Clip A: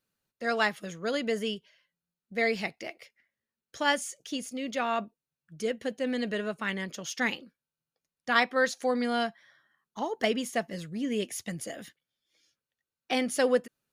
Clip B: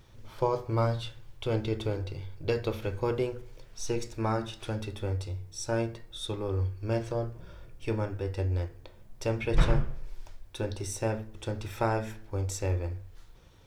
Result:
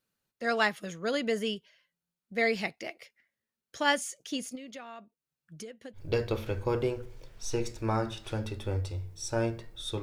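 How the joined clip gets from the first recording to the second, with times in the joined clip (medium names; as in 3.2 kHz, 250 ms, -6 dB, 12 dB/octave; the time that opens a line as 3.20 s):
clip A
4.55–6.01 s: compression 16:1, threshold -41 dBFS
5.97 s: go over to clip B from 2.33 s, crossfade 0.08 s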